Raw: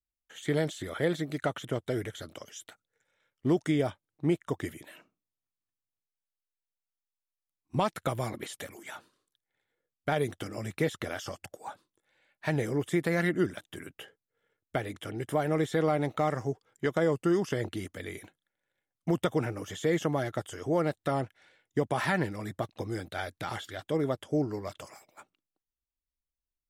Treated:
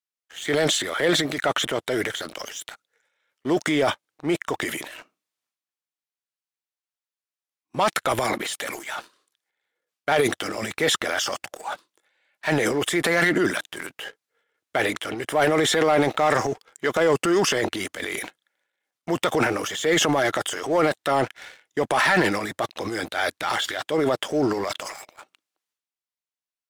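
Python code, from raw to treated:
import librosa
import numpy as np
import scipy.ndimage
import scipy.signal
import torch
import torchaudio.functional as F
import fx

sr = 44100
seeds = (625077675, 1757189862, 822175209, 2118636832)

y = fx.weighting(x, sr, curve='A')
y = fx.transient(y, sr, attack_db=-4, sustain_db=10)
y = fx.leveller(y, sr, passes=2)
y = F.gain(torch.from_numpy(y), 4.5).numpy()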